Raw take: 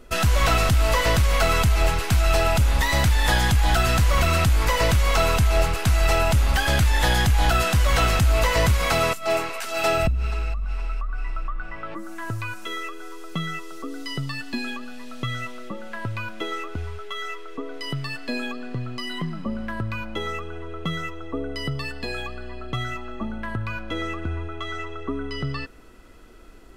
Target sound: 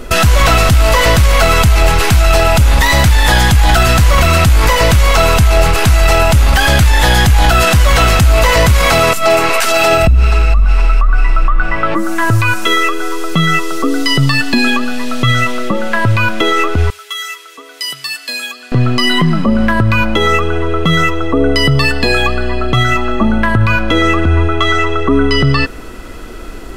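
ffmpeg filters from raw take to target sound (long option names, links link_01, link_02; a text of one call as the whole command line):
ffmpeg -i in.wav -filter_complex "[0:a]asettb=1/sr,asplit=3[link_01][link_02][link_03];[link_01]atrim=end=16.904[link_04];[link_02]atrim=start=16.9:end=18.72,asetpts=PTS-STARTPTS,afade=type=in:duration=0.004:curve=qsin,afade=type=out:start_time=1.816:duration=0.004:curve=qsin,aderivative[link_05];[link_03]atrim=start=18.716[link_06];[link_04][link_05]acrossfade=duration=0.004:curve1=hsin:curve2=qsin[link_07];[link_07][link_06]acrossfade=duration=0.004:curve1=qsin:curve2=hsin,alimiter=level_in=21dB:limit=-1dB:release=50:level=0:latency=1,volume=-1dB" out.wav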